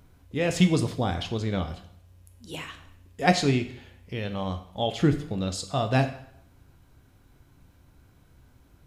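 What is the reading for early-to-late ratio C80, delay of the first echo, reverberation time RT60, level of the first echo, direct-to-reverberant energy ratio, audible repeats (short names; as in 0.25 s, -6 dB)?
14.5 dB, none, 0.70 s, none, 7.5 dB, none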